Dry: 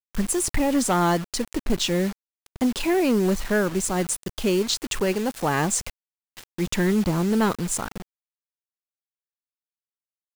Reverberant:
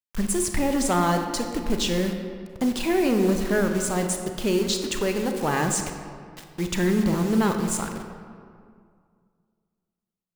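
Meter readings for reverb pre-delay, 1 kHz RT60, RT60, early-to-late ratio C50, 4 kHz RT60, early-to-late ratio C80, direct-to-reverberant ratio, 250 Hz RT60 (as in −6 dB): 29 ms, 2.1 s, 2.2 s, 6.0 dB, 1.2 s, 7.0 dB, 5.0 dB, 2.3 s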